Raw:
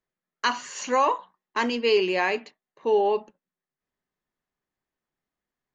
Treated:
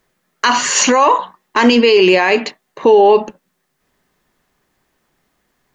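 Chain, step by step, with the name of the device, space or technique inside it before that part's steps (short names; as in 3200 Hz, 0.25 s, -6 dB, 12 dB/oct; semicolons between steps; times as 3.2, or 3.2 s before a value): loud club master (compressor 2:1, threshold -26 dBFS, peak gain reduction 5.5 dB; hard clip -14.5 dBFS, distortion -46 dB; maximiser +24 dB); gain -1 dB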